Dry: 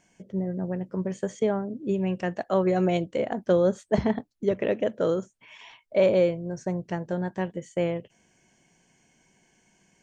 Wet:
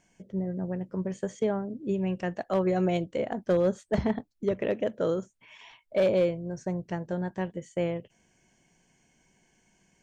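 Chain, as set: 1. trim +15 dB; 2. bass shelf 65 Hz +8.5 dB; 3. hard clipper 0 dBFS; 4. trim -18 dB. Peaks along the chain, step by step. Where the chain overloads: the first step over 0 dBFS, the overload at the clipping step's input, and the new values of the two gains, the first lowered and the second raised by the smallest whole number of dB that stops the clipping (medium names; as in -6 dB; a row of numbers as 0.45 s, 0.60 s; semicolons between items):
+5.5 dBFS, +5.5 dBFS, 0.0 dBFS, -18.0 dBFS; step 1, 5.5 dB; step 1 +9 dB, step 4 -12 dB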